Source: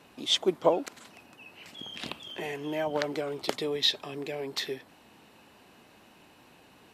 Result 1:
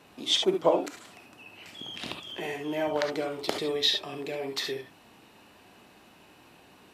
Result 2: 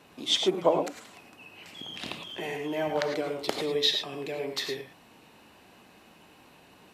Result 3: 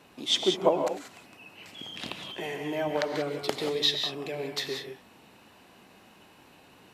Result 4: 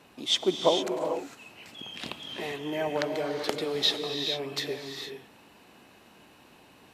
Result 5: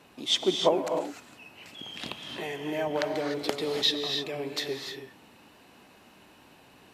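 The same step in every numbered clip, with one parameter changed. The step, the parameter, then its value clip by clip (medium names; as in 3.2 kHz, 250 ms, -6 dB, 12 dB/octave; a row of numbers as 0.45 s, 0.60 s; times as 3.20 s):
gated-style reverb, gate: 90 ms, 130 ms, 210 ms, 480 ms, 330 ms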